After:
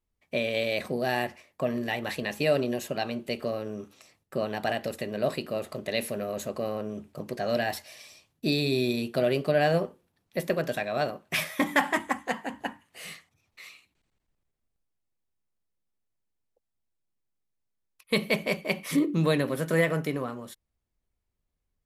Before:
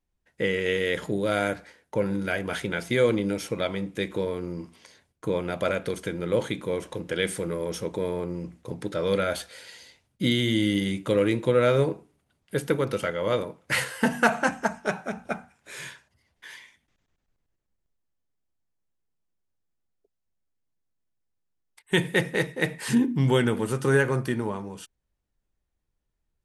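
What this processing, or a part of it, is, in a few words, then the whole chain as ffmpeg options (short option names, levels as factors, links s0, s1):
nightcore: -af "asetrate=53361,aresample=44100,volume=0.75"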